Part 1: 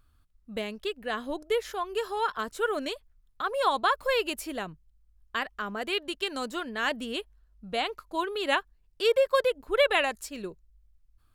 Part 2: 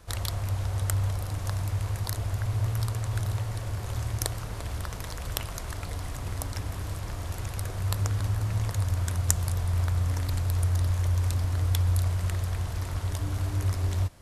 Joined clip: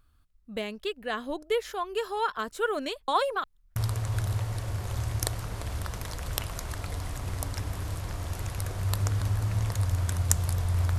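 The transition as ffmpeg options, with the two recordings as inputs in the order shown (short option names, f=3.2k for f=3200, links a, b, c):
-filter_complex "[0:a]apad=whole_dur=10.98,atrim=end=10.98,asplit=2[a][b];[a]atrim=end=3.082[c];[b]atrim=start=3.078:end=3.762,asetpts=PTS-STARTPTS,areverse[d];[1:a]atrim=start=2.748:end=9.97[e];[c][d]acrossfade=d=0.004:c1=hsin:c2=hsin[f];[f][e]acrossfade=d=0.004:c1=hsin:c2=hsin"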